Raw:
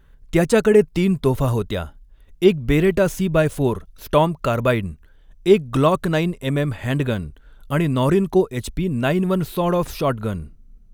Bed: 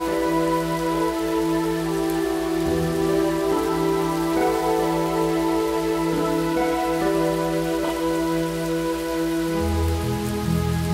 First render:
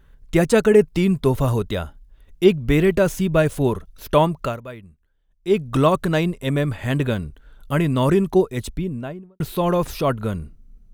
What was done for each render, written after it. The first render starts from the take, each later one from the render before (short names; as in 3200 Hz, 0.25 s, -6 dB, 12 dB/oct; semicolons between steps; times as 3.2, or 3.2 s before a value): 4.4–5.62 dip -17.5 dB, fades 0.20 s; 8.52–9.4 studio fade out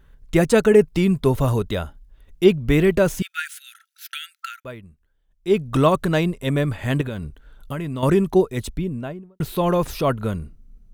3.22–4.65 brick-wall FIR high-pass 1300 Hz; 7.01–8.03 compressor, threshold -24 dBFS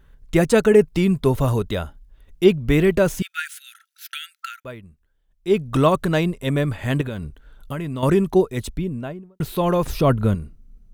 9.86–10.35 low shelf 340 Hz +8 dB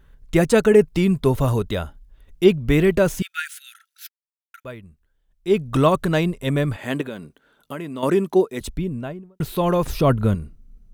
4.09–4.54 mute; 6.76–8.61 Chebyshev high-pass 260 Hz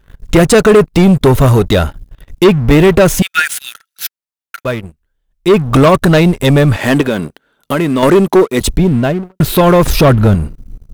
in parallel at +2 dB: compressor 8:1, threshold -24 dBFS, peak gain reduction 16 dB; on the sum: sample leveller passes 3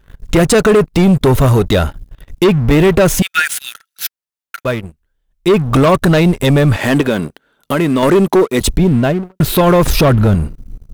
limiter -5 dBFS, peak gain reduction 4 dB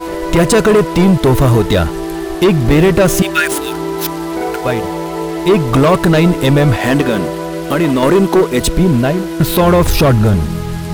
add bed +1.5 dB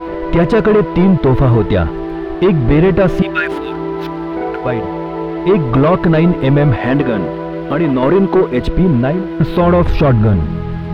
air absorption 370 m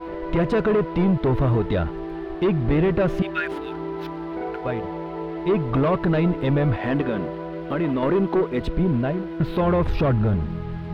gain -9.5 dB